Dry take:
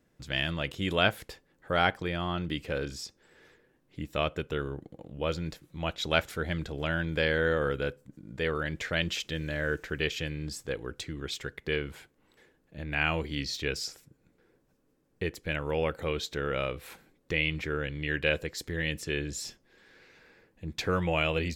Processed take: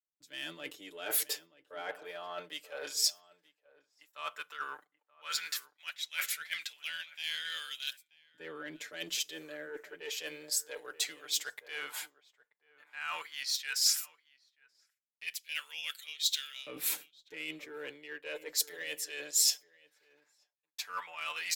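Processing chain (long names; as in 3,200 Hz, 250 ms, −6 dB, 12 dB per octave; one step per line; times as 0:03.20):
auto-filter high-pass saw up 0.12 Hz 260–4,000 Hz
noise gate −54 dBFS, range −26 dB
comb filter 6.8 ms, depth 84%
reversed playback
downward compressor 8 to 1, threshold −41 dBFS, peak gain reduction 24 dB
reversed playback
harmonic generator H 8 −31 dB, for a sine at −26.5 dBFS
RIAA equalisation recording
slap from a distant wall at 160 metres, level −12 dB
on a send at −21.5 dB: convolution reverb RT60 0.40 s, pre-delay 3 ms
on the sum: multiband upward and downward expander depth 70%
level +1.5 dB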